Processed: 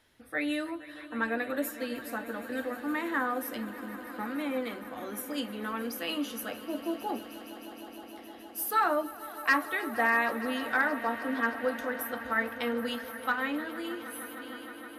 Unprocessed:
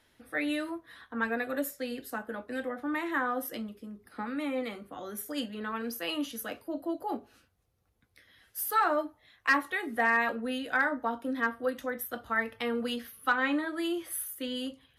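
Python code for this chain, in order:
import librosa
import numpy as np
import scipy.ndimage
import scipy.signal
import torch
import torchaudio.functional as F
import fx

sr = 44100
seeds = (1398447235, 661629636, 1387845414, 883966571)

y = fx.fade_out_tail(x, sr, length_s=2.32)
y = fx.echo_swell(y, sr, ms=155, loudest=5, wet_db=-18.0)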